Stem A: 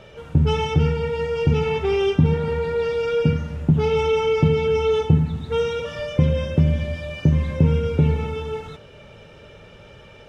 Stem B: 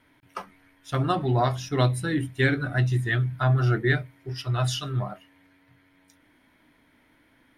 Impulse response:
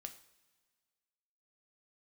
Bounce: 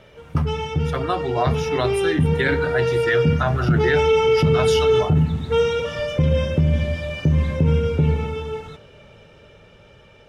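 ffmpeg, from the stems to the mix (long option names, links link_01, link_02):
-filter_complex "[0:a]dynaudnorm=framelen=290:gausssize=17:maxgain=11.5dB,volume=-4dB[link_01];[1:a]bass=frequency=250:gain=-11,treble=frequency=4000:gain=-3,volume=0.5dB,asplit=2[link_02][link_03];[link_03]volume=-5dB[link_04];[2:a]atrim=start_sample=2205[link_05];[link_04][link_05]afir=irnorm=-1:irlink=0[link_06];[link_01][link_02][link_06]amix=inputs=3:normalize=0,dynaudnorm=framelen=420:gausssize=11:maxgain=11.5dB,alimiter=limit=-9.5dB:level=0:latency=1:release=18"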